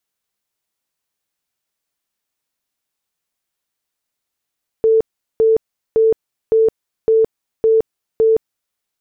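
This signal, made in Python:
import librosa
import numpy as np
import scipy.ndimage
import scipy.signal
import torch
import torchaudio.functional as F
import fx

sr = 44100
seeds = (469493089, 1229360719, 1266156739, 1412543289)

y = fx.tone_burst(sr, hz=445.0, cycles=74, every_s=0.56, bursts=7, level_db=-9.0)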